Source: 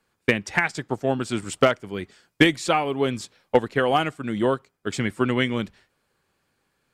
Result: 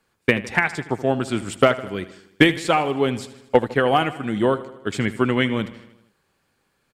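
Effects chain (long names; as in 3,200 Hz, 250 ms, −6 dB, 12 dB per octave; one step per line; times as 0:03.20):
dynamic equaliser 6,100 Hz, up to −6 dB, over −45 dBFS, Q 1.3
repeating echo 78 ms, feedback 59%, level −16 dB
level +2.5 dB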